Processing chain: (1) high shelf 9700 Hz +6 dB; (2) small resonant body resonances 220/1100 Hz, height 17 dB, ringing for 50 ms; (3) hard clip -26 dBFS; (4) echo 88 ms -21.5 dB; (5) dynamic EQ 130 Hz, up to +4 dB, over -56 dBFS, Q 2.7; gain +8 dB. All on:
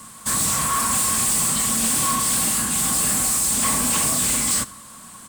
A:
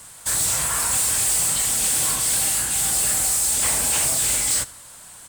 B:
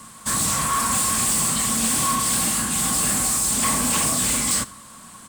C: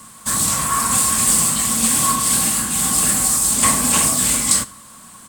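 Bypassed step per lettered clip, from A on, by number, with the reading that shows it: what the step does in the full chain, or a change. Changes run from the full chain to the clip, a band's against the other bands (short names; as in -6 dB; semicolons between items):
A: 2, 250 Hz band -10.0 dB; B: 1, 8 kHz band -2.0 dB; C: 3, distortion -8 dB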